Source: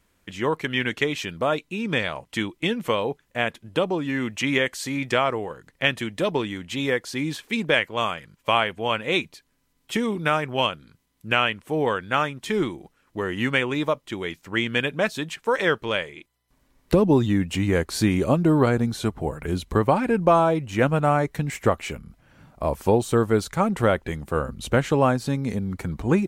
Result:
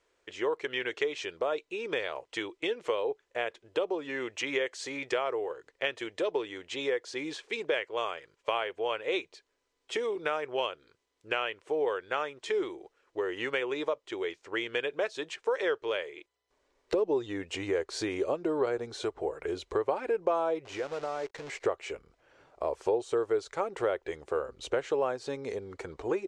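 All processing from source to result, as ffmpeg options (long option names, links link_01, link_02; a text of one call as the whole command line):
ffmpeg -i in.wav -filter_complex "[0:a]asettb=1/sr,asplit=3[link_01][link_02][link_03];[link_01]atrim=end=20.654[link_04];[link_02]atrim=start=20.65:end=21.66,asetpts=PTS-STARTPTS,afade=type=in:duration=0.004:curve=qsin,afade=type=out:start_time=1.006:duration=0.004:curve=qsin,acompressor=threshold=-25dB:ratio=6:attack=3.2:release=140:knee=1:detection=peak,acrusher=bits=7:dc=4:mix=0:aa=0.000001,equalizer=frequency=9500:width=1.3:gain=-5.5[link_05];[link_03]atrim=start=21.656[link_06];[link_04][link_05]acrossfade=duration=0.004:curve1=hsin:curve2=qsin[link_07];[link_07][link_06]acrossfade=duration=0.004:curve1=qsin:curve2=hsin,lowshelf=frequency=290:width_type=q:width=3:gain=-12,acompressor=threshold=-25dB:ratio=2,lowpass=frequency=7600:width=0.5412,lowpass=frequency=7600:width=1.3066,volume=-5.5dB" out.wav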